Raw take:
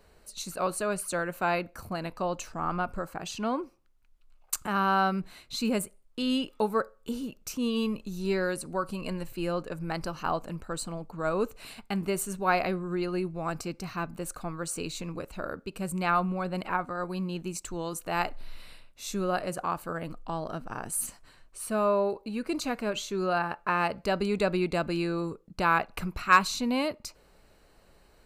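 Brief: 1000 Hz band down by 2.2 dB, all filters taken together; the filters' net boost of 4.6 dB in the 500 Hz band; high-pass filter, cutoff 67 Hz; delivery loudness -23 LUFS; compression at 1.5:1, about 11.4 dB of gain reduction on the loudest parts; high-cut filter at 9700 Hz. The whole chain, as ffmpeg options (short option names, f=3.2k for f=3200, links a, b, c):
-af "highpass=67,lowpass=9.7k,equalizer=f=500:t=o:g=7.5,equalizer=f=1k:t=o:g=-5.5,acompressor=threshold=-51dB:ratio=1.5,volume=16dB"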